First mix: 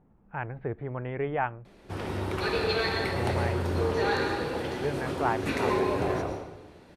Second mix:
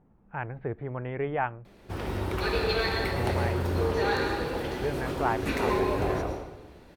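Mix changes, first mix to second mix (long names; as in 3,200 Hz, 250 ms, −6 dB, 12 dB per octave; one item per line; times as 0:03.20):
background: remove high-pass filter 74 Hz 24 dB per octave
master: remove low-pass filter 12,000 Hz 24 dB per octave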